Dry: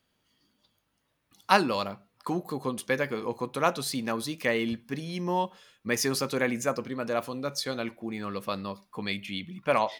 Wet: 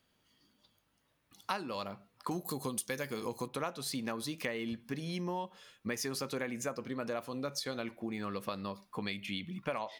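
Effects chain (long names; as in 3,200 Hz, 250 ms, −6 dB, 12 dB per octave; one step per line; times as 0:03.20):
0:02.31–0:03.48: bass and treble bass +3 dB, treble +15 dB
downward compressor 6 to 1, threshold −34 dBFS, peak gain reduction 18 dB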